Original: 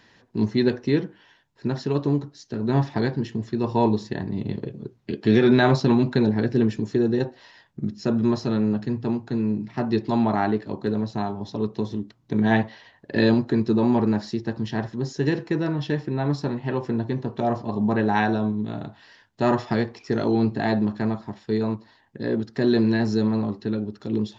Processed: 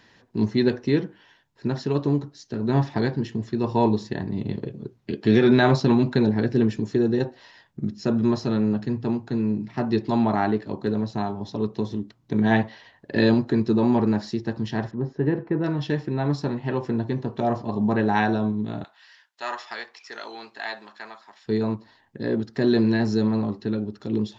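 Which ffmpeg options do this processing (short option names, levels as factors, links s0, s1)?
-filter_complex "[0:a]asettb=1/sr,asplit=3[s0][s1][s2];[s0]atrim=end=14.914[s3];[s1]atrim=start=14.91:end=15.64,asetpts=PTS-STARTPTS,afade=t=in:d=0.004:c=qsin,afade=t=out:st=0.726:d=0.004:c=qsin,lowpass=1400[s4];[s2]atrim=start=15.636[s5];[s3][s4]acrossfade=d=0.004:c1=hsin:c2=qsin[s6];[s6][s5]acrossfade=d=0.004:c1=qsin:c2=hsin,asettb=1/sr,asplit=3[s7][s8][s9];[s7]atrim=end=18.844[s10];[s8]atrim=start=18.84:end=21.46,asetpts=PTS-STARTPTS,afade=t=in:d=0.004:c=qsin,afade=t=out:st=2.616:d=0.004:c=qsin,highpass=1200[s11];[s9]atrim=start=21.456[s12];[s10][s11]acrossfade=d=0.004:c1=hsin:c2=qsin[s13];[s13][s12]acrossfade=d=0.004:c1=qsin:c2=hsin"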